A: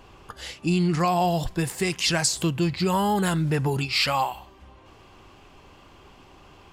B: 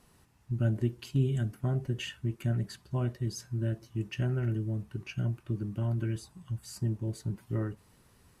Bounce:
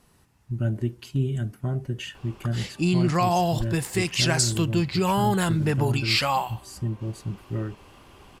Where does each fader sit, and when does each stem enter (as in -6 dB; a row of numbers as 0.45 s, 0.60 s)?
0.0 dB, +2.5 dB; 2.15 s, 0.00 s